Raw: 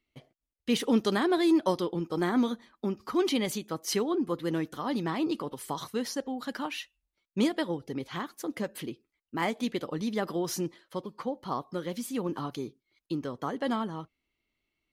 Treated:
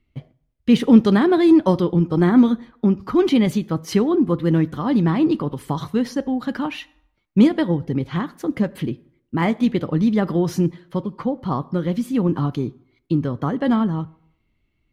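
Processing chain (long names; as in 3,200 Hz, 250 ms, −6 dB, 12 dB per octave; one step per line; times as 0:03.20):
bass and treble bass +14 dB, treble −10 dB
convolution reverb RT60 0.75 s, pre-delay 5 ms, DRR 17.5 dB
level +6.5 dB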